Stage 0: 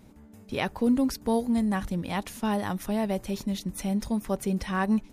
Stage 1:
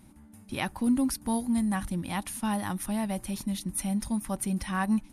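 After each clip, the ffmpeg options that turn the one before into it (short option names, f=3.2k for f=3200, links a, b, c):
-af "superequalizer=7b=0.282:8b=0.562:16b=3.16,volume=-1.5dB"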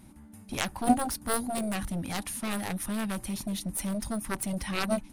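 -af "aeval=exprs='0.158*(cos(1*acos(clip(val(0)/0.158,-1,1)))-cos(1*PI/2))+0.0251*(cos(2*acos(clip(val(0)/0.158,-1,1)))-cos(2*PI/2))+0.0794*(cos(3*acos(clip(val(0)/0.158,-1,1)))-cos(3*PI/2))+0.01*(cos(4*acos(clip(val(0)/0.158,-1,1)))-cos(4*PI/2))':c=same,volume=8dB"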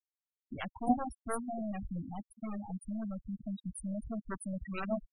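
-af "afftfilt=real='re*gte(hypot(re,im),0.0708)':imag='im*gte(hypot(re,im),0.0708)':win_size=1024:overlap=0.75,volume=-5.5dB"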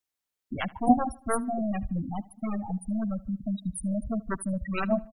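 -filter_complex "[0:a]asplit=2[a][b];[b]adelay=76,lowpass=f=3.5k:p=1,volume=-21.5dB,asplit=2[c][d];[d]adelay=76,lowpass=f=3.5k:p=1,volume=0.46,asplit=2[e][f];[f]adelay=76,lowpass=f=3.5k:p=1,volume=0.46[g];[a][c][e][g]amix=inputs=4:normalize=0,volume=8.5dB"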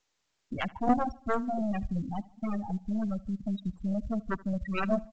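-af "aeval=exprs='(tanh(5.62*val(0)+0.45)-tanh(0.45))/5.62':c=same" -ar 16000 -c:a pcm_mulaw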